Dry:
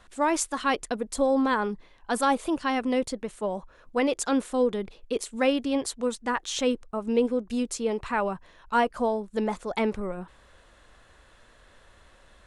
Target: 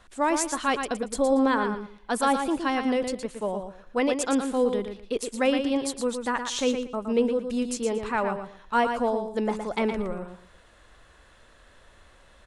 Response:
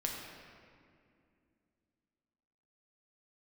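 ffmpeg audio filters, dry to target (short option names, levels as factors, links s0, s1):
-af "aecho=1:1:116|232|348:0.447|0.0983|0.0216"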